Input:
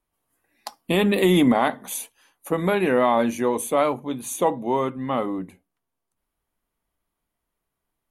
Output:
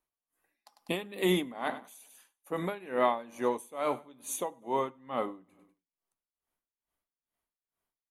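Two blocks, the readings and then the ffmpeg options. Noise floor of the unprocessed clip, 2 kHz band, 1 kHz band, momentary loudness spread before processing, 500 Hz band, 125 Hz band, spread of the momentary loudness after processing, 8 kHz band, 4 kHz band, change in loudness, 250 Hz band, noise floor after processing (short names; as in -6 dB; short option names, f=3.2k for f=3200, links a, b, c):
-82 dBFS, -10.5 dB, -9.5 dB, 15 LU, -10.5 dB, -13.0 dB, 10 LU, -9.5 dB, -9.0 dB, -10.5 dB, -14.0 dB, under -85 dBFS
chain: -af "lowshelf=f=250:g=-8.5,aecho=1:1:99|198|297|396:0.126|0.0617|0.0302|0.0148,aeval=exprs='val(0)*pow(10,-20*(0.5-0.5*cos(2*PI*2.3*n/s))/20)':c=same,volume=-4dB"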